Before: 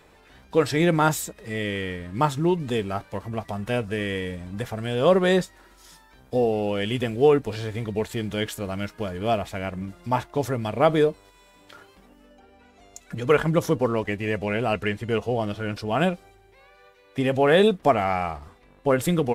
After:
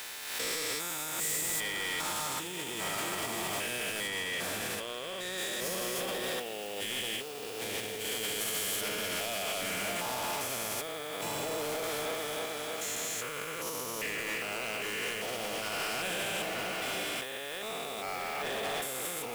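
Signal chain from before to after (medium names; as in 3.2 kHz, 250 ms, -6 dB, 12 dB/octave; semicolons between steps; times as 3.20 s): spectrogram pixelated in time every 400 ms; delay with an opening low-pass 311 ms, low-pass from 200 Hz, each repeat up 2 oct, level -6 dB; compressor with a negative ratio -33 dBFS, ratio -1; differentiator; waveshaping leveller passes 5; added noise blue -55 dBFS; 4.07–5.38 s: treble shelf 6.5 kHz -5.5 dB; swell ahead of each attack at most 46 dB/s; trim +2.5 dB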